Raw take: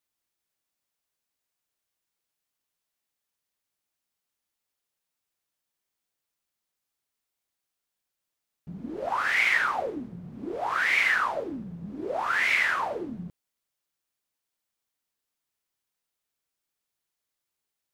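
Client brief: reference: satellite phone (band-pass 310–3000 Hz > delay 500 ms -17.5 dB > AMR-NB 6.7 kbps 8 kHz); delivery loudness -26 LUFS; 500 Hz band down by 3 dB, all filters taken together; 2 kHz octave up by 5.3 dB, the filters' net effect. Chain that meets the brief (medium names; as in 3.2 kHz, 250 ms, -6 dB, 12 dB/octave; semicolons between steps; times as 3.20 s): band-pass 310–3000 Hz; peaking EQ 500 Hz -3.5 dB; peaking EQ 2 kHz +7 dB; delay 500 ms -17.5 dB; trim -4 dB; AMR-NB 6.7 kbps 8 kHz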